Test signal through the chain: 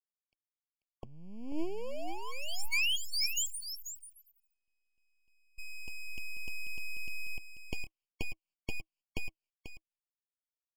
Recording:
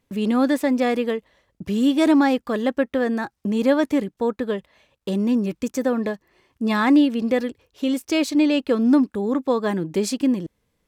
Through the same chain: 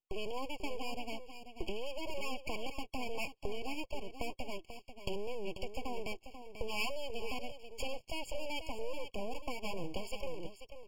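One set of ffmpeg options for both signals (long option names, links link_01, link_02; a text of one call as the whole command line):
ffmpeg -i in.wav -af "agate=range=-28dB:threshold=-50dB:ratio=16:detection=peak,dynaudnorm=framelen=100:gausssize=21:maxgain=15dB,alimiter=limit=-14.5dB:level=0:latency=1:release=441,acompressor=threshold=-37dB:ratio=4,highpass=160,equalizer=frequency=160:width_type=q:width=4:gain=10,equalizer=frequency=450:width_type=q:width=4:gain=-5,equalizer=frequency=940:width_type=q:width=4:gain=8,equalizer=frequency=2100:width_type=q:width=4:gain=-10,lowpass=frequency=3100:width=0.5412,lowpass=frequency=3100:width=1.3066,aeval=exprs='abs(val(0))':channel_layout=same,aecho=1:1:489:0.316,aexciter=amount=3.6:drive=6.1:freq=2100,afftfilt=real='re*eq(mod(floor(b*sr/1024/1100),2),0)':imag='im*eq(mod(floor(b*sr/1024/1100),2),0)':win_size=1024:overlap=0.75" out.wav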